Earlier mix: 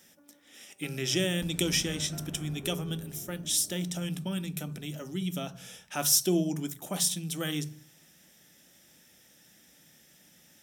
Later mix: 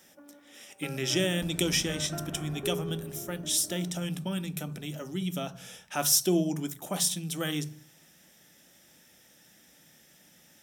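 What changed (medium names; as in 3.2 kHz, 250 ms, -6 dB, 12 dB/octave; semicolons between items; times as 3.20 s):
first sound +7.5 dB; master: add peaking EQ 870 Hz +3 dB 2.1 oct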